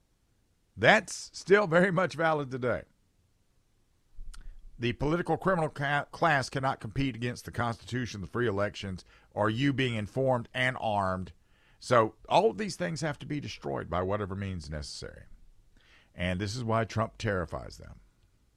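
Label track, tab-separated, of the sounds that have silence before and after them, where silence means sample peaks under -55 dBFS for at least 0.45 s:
0.760000	2.910000	sound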